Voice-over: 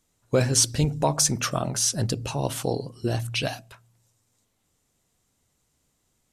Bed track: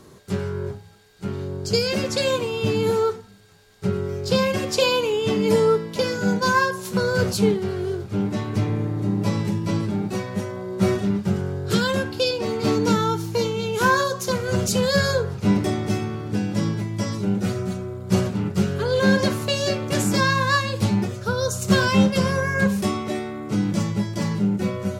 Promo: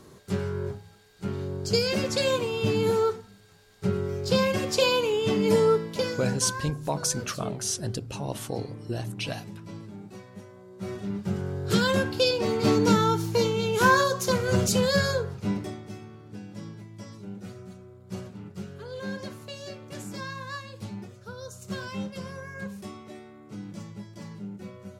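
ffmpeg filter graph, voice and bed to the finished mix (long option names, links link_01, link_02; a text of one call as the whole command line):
ffmpeg -i stem1.wav -i stem2.wav -filter_complex "[0:a]adelay=5850,volume=-6dB[link_01];[1:a]volume=13.5dB,afade=type=out:start_time=5.84:duration=0.73:silence=0.188365,afade=type=in:start_time=10.81:duration=1.16:silence=0.149624,afade=type=out:start_time=14.56:duration=1.28:silence=0.158489[link_02];[link_01][link_02]amix=inputs=2:normalize=0" out.wav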